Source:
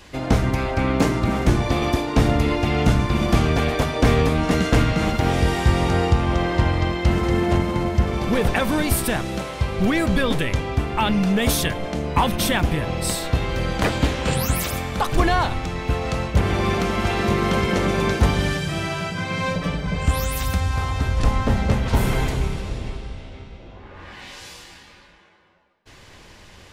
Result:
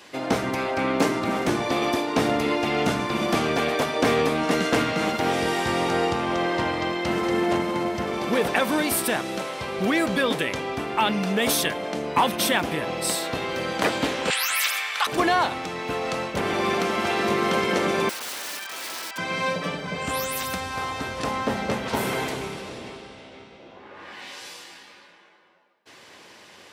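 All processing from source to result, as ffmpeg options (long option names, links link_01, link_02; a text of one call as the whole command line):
ffmpeg -i in.wav -filter_complex "[0:a]asettb=1/sr,asplit=3[link_01][link_02][link_03];[link_01]atrim=end=14.304[link_04];[link_02]atrim=start=14.3:end=15.07,asetpts=PTS-STARTPTS,afade=type=in:duration=0.004:curve=qsin,afade=type=out:start_time=0.766:duration=0.004:curve=qsin,highpass=1300,equalizer=frequency=2300:width=0.55:gain=8[link_05];[link_03]atrim=start=15.066[link_06];[link_04][link_05]acrossfade=duration=0.004:curve1=hsin:curve2=qsin[link_07];[link_07][link_06]acrossfade=duration=0.004:curve1=qsin:curve2=hsin,asettb=1/sr,asplit=3[link_08][link_09][link_10];[link_08]atrim=end=18.094[link_11];[link_09]atrim=start=18.09:end=19.18,asetpts=PTS-STARTPTS,afade=type=in:duration=0.004:curve=qsin,afade=type=out:start_time=1.086:duration=0.004:curve=qsin,highpass=frequency=860:width=0.5412,highpass=frequency=860:width=1.3066,aemphasis=mode=reproduction:type=75fm,aeval=exprs='(mod(25.1*val(0)+1,2)-1)/25.1':channel_layout=same[link_12];[link_10]atrim=start=19.176[link_13];[link_11][link_12]acrossfade=duration=0.004:curve1=hsin:curve2=qsin[link_14];[link_14][link_13]acrossfade=duration=0.004:curve1=qsin:curve2=hsin,highpass=270,bandreject=frequency=6800:width=27" out.wav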